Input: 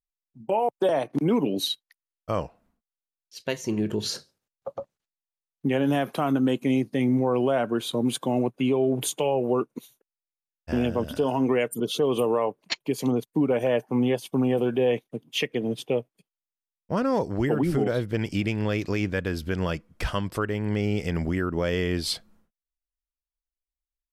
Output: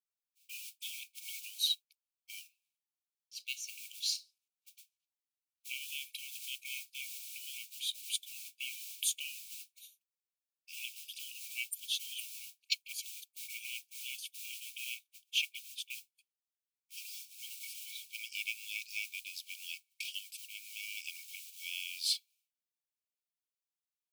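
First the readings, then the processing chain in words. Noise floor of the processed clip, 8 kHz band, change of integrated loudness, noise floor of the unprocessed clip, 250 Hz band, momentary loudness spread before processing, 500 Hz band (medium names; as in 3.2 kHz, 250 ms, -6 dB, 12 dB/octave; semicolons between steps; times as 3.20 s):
under -85 dBFS, -1.5 dB, -13.5 dB, under -85 dBFS, under -40 dB, 8 LU, under -40 dB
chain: modulation noise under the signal 21 dB; brick-wall FIR high-pass 2.2 kHz; trim -3 dB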